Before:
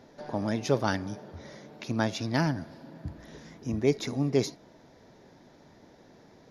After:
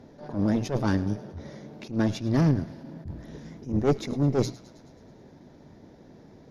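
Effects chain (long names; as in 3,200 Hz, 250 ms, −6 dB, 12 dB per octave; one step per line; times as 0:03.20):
low-shelf EQ 440 Hz +12 dB
mains-hum notches 60/120/180 Hz
tube saturation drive 17 dB, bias 0.8
delay with a high-pass on its return 107 ms, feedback 64%, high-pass 1,700 Hz, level −17 dB
level that may rise only so fast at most 170 dB per second
level +2.5 dB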